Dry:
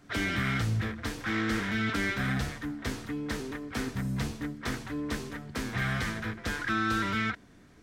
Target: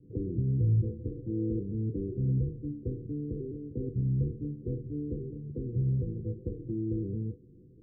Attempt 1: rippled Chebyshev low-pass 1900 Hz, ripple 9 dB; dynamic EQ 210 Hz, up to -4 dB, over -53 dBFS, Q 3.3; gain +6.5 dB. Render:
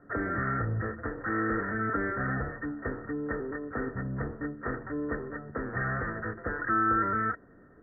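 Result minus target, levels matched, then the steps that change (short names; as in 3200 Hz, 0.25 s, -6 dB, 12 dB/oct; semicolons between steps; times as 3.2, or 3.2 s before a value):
500 Hz band +3.0 dB
change: rippled Chebyshev low-pass 510 Hz, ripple 9 dB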